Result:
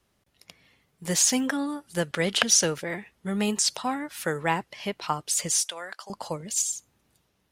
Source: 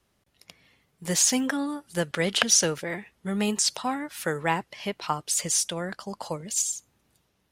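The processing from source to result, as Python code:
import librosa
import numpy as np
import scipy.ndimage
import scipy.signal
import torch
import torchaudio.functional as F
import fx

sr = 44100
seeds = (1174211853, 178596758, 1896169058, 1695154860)

y = fx.highpass(x, sr, hz=750.0, slope=12, at=(5.62, 6.1))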